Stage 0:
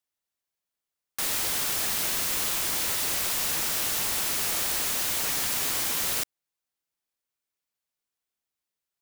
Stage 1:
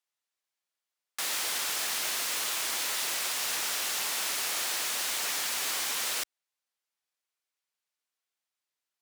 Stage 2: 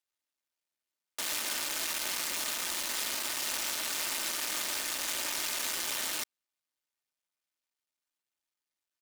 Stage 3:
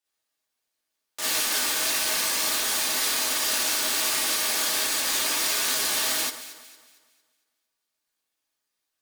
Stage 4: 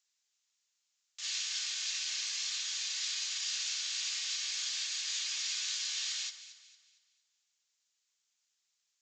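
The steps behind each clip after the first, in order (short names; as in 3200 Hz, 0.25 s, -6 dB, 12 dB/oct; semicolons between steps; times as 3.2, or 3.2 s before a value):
in parallel at -2 dB: limiter -22 dBFS, peak gain reduction 7 dB; on the sum: weighting filter A; gain -5 dB
cycle switcher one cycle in 2, muted; comb 3.3 ms, depth 33%
echo with dull and thin repeats by turns 0.114 s, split 1700 Hz, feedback 62%, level -10 dB; non-linear reverb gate 80 ms rising, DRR -7.5 dB
Butterworth band-pass 5400 Hz, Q 0.7; added noise violet -60 dBFS; downsampling 16000 Hz; gain -7.5 dB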